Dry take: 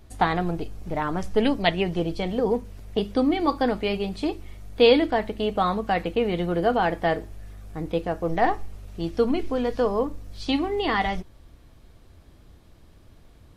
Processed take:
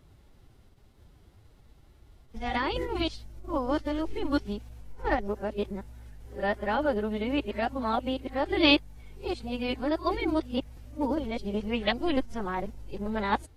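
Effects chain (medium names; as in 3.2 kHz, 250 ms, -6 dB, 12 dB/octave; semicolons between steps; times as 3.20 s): reverse the whole clip; formant-preserving pitch shift +3.5 st; trim -5 dB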